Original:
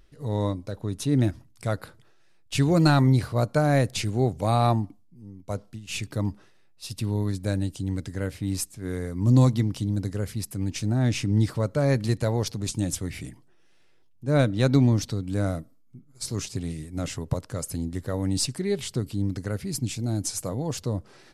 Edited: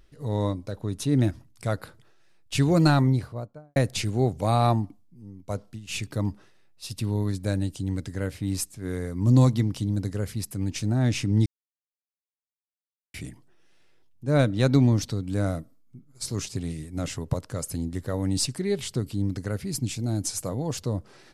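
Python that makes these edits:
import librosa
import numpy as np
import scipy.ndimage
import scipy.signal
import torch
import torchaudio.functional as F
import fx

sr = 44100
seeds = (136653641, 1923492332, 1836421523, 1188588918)

y = fx.studio_fade_out(x, sr, start_s=2.78, length_s=0.98)
y = fx.edit(y, sr, fx.silence(start_s=11.46, length_s=1.68), tone=tone)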